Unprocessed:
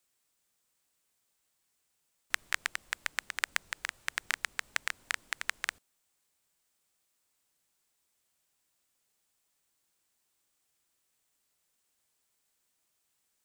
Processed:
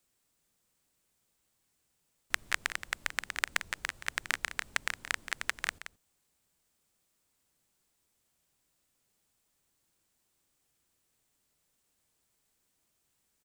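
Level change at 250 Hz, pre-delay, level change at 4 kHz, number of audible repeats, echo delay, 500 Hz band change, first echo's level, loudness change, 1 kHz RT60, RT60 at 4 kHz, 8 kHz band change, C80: +7.0 dB, none, +0.5 dB, 1, 0.174 s, +3.5 dB, -12.0 dB, +0.5 dB, none, none, +0.5 dB, none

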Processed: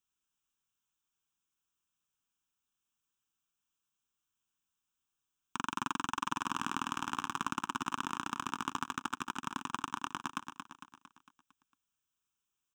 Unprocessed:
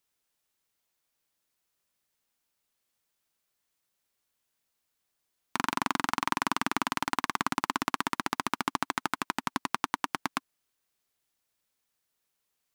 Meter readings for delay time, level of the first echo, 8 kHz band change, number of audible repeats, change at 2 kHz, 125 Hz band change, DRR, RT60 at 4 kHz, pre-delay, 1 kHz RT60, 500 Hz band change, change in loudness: 0.227 s, -7.5 dB, -5.5 dB, 5, -7.5 dB, -5.0 dB, none, none, none, none, -11.5 dB, -6.0 dB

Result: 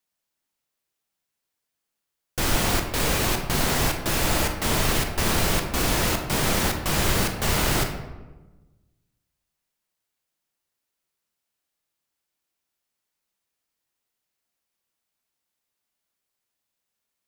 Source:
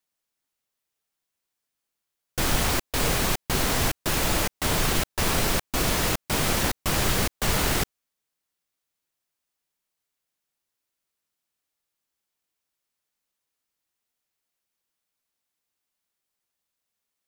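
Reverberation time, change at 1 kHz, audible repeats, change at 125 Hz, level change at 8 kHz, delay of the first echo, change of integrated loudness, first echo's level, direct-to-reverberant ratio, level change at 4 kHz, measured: 1.2 s, +1.5 dB, none, +2.0 dB, +0.5 dB, none, +1.0 dB, none, 4.0 dB, +1.0 dB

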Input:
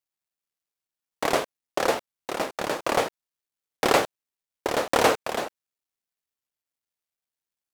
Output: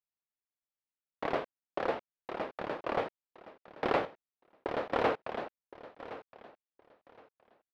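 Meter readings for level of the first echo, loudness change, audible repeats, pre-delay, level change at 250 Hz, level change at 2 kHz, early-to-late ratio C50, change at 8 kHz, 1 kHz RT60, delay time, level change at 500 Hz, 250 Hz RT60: -15.5 dB, -10.0 dB, 2, none, -8.0 dB, -10.5 dB, none, under -30 dB, none, 1.067 s, -8.5 dB, none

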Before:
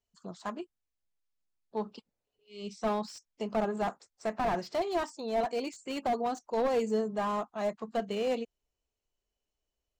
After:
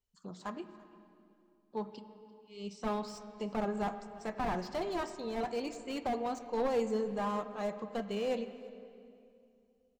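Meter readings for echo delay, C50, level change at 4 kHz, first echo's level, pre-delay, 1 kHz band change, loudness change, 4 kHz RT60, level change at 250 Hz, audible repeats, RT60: 0.341 s, 11.0 dB, -3.5 dB, -22.0 dB, 7 ms, -4.0 dB, -3.5 dB, 2.2 s, -1.5 dB, 1, 2.6 s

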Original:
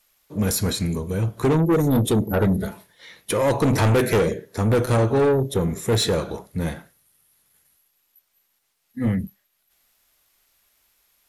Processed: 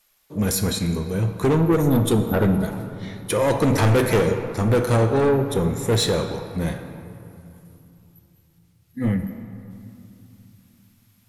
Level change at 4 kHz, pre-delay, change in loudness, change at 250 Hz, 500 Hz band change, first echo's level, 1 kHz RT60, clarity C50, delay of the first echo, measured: +0.5 dB, 6 ms, +0.5 dB, +1.0 dB, +0.5 dB, none, 2.9 s, 8.0 dB, none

